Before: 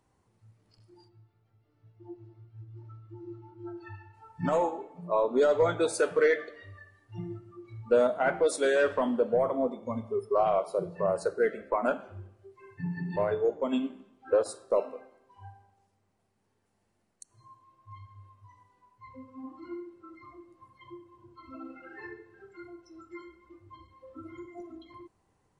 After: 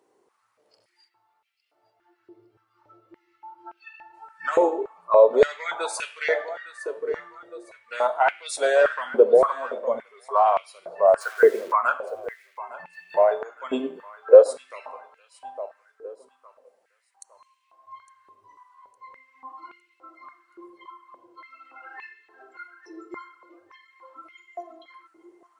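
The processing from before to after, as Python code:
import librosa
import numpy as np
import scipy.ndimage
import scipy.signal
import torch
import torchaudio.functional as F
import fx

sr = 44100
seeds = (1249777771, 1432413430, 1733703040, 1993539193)

y = fx.quant_dither(x, sr, seeds[0], bits=8, dither='none', at=(11.2, 11.71), fade=0.02)
y = fx.echo_feedback(y, sr, ms=859, feedback_pct=38, wet_db=-17.0)
y = fx.filter_held_highpass(y, sr, hz=3.5, low_hz=400.0, high_hz=2600.0)
y = y * 10.0 ** (3.0 / 20.0)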